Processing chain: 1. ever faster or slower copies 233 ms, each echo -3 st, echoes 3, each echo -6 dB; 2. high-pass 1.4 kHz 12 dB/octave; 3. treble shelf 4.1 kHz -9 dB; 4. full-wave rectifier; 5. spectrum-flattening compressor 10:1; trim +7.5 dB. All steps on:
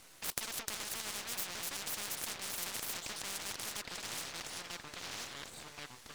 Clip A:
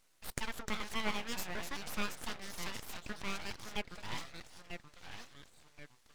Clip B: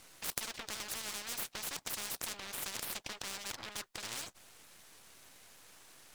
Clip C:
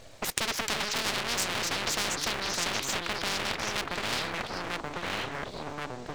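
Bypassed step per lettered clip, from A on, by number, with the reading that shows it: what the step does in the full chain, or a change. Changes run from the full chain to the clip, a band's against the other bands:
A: 5, 8 kHz band -12.0 dB; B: 1, crest factor change +1.5 dB; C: 2, 8 kHz band -8.5 dB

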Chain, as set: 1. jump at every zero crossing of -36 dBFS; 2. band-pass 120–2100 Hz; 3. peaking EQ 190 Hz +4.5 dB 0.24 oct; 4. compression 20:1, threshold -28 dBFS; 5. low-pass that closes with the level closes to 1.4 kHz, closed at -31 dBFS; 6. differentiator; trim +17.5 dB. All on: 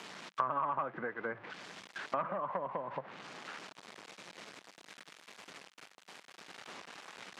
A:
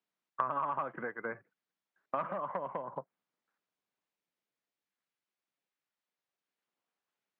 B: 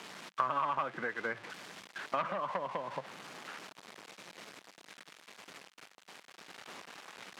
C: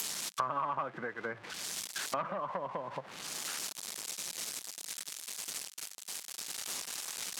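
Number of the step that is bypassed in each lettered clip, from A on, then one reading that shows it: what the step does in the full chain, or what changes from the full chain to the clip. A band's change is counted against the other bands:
1, distortion -15 dB; 5, 2 kHz band +2.5 dB; 2, 8 kHz band +20.5 dB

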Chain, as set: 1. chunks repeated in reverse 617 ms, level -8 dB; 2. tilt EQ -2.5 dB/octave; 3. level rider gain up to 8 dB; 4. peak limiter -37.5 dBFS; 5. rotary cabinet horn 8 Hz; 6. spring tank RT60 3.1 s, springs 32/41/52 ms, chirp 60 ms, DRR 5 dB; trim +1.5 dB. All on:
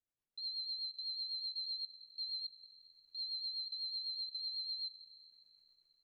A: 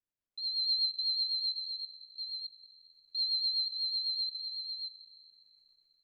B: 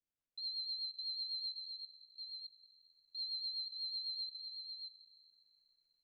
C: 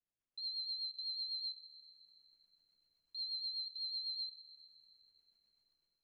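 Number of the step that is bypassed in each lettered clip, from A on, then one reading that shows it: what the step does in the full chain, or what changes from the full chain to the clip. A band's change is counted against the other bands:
4, mean gain reduction 6.5 dB; 3, loudness change -1.5 LU; 1, momentary loudness spread change +3 LU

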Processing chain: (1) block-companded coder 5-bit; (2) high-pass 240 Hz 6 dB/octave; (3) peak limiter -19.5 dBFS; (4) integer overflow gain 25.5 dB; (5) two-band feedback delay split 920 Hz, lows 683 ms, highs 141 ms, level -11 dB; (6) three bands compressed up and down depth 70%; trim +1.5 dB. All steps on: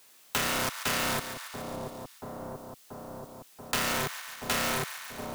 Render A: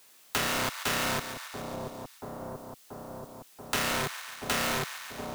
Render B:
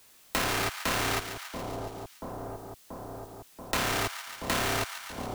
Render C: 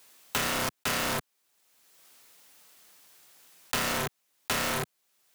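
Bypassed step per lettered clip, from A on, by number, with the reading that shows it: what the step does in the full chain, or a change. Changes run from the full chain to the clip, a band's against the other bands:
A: 1, distortion -24 dB; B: 2, 8 kHz band -2.5 dB; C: 5, momentary loudness spread change -9 LU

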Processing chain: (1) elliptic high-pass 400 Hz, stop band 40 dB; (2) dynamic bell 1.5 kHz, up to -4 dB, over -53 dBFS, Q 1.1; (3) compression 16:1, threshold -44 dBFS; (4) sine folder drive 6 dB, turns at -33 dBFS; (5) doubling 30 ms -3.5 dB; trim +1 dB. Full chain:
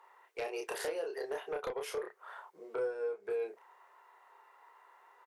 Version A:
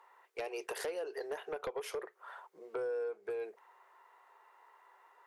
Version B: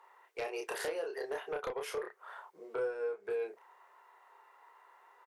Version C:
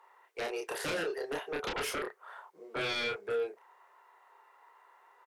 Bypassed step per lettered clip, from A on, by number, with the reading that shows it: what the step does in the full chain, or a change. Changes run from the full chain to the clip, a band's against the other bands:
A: 5, crest factor change -2.5 dB; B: 2, 2 kHz band +2.0 dB; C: 3, mean gain reduction 6.5 dB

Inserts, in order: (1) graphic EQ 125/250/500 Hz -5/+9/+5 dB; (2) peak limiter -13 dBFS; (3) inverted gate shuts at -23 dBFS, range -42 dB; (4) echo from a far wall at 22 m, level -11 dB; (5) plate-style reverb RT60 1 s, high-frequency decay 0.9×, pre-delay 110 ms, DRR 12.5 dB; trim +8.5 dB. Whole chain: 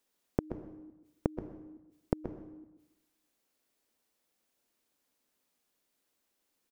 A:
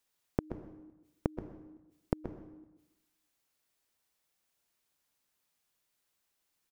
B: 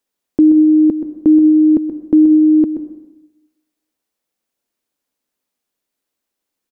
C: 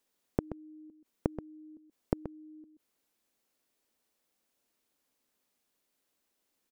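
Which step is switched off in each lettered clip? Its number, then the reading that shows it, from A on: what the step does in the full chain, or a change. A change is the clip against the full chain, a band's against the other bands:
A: 1, 2 kHz band +2.0 dB; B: 3, momentary loudness spread change -9 LU; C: 5, echo-to-direct -8.5 dB to -11.5 dB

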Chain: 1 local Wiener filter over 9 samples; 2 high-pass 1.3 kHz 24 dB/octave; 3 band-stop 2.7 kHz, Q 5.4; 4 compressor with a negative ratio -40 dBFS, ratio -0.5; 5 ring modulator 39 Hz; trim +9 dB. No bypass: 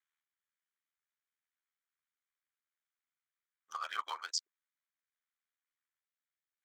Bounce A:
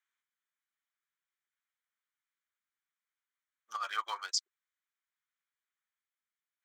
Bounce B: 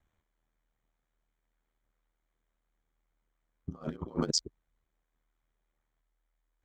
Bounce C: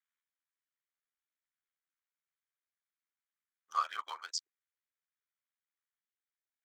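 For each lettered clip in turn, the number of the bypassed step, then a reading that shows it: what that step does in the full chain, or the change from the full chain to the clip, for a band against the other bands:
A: 5, loudness change +3.0 LU; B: 2, 500 Hz band +20.5 dB; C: 4, 1 kHz band +6.0 dB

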